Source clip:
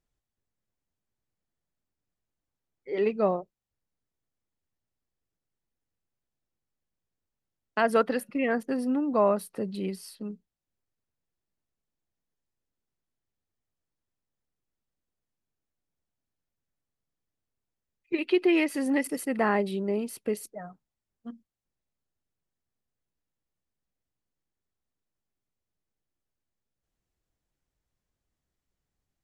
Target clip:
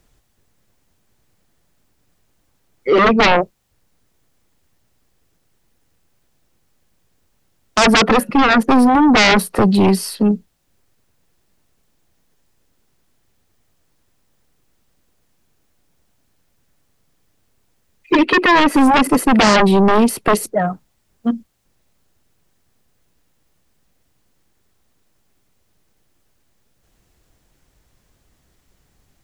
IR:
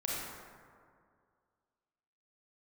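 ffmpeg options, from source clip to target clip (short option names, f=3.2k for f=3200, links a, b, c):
-filter_complex "[0:a]acrossover=split=170|1600[a][b][c];[c]acompressor=threshold=-48dB:ratio=6[d];[a][b][d]amix=inputs=3:normalize=0,aeval=exprs='0.251*sin(PI/2*6.31*val(0)/0.251)':c=same,volume=4dB"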